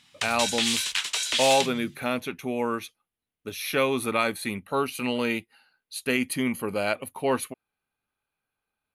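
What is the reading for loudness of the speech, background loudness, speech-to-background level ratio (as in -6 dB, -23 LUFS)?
-27.5 LUFS, -25.5 LUFS, -2.0 dB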